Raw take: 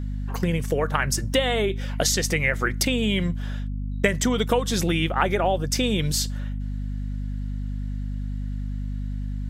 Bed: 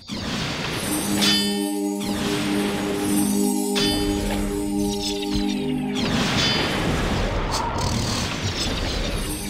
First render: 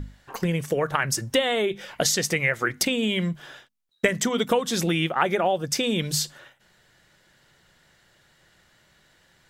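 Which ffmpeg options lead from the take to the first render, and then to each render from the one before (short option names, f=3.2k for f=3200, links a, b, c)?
-af "bandreject=f=50:t=h:w=6,bandreject=f=100:t=h:w=6,bandreject=f=150:t=h:w=6,bandreject=f=200:t=h:w=6,bandreject=f=250:t=h:w=6"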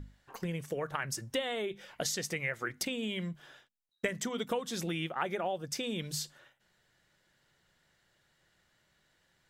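-af "volume=-11.5dB"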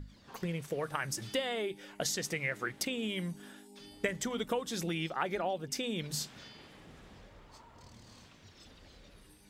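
-filter_complex "[1:a]volume=-32dB[a];[0:a][a]amix=inputs=2:normalize=0"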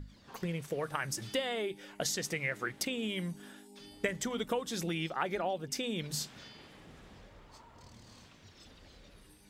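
-af anull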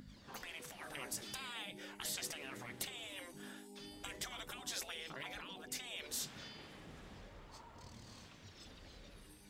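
-af "bandreject=f=123.4:t=h:w=4,bandreject=f=246.8:t=h:w=4,bandreject=f=370.2:t=h:w=4,bandreject=f=493.6:t=h:w=4,bandreject=f=617:t=h:w=4,bandreject=f=740.4:t=h:w=4,bandreject=f=863.8:t=h:w=4,bandreject=f=987.2:t=h:w=4,afftfilt=real='re*lt(hypot(re,im),0.0282)':imag='im*lt(hypot(re,im),0.0282)':win_size=1024:overlap=0.75"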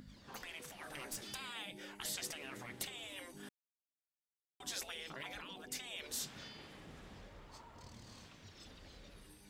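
-filter_complex "[0:a]asettb=1/sr,asplit=3[a][b][c];[a]atrim=end=0.654[d];[b]atrim=start=0.65:end=1.27,asetpts=PTS-STARTPTS,afade=t=in:d=0.004:c=qsin,afade=t=out:st=0.616:d=0.004:c=qsin,aeval=exprs='clip(val(0),-1,0.0075)':c=same[e];[c]atrim=start=1.266[f];[d][e]acrossfade=d=0.004:c1=hsin:c2=qsin[g];[g][f]acrossfade=d=0.004:c1=qsin:c2=hsin,asplit=3[h][i][j];[h]atrim=end=3.49,asetpts=PTS-STARTPTS,afade=t=out:st=3.486:d=0.004:c=hsin[k];[i]atrim=start=3.49:end=4.6,asetpts=PTS-STARTPTS,volume=0[l];[j]atrim=start=4.6,asetpts=PTS-STARTPTS,afade=t=in:d=0.004:c=hsin[m];[k][l][m]concat=n=3:v=0:a=1"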